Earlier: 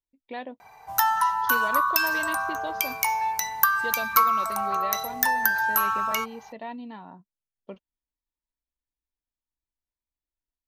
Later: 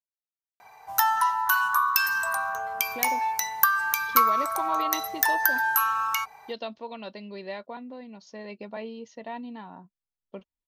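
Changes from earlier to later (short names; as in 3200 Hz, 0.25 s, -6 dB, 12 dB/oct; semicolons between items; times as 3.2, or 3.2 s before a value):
speech: entry +2.65 s; background: add low shelf 250 Hz -8.5 dB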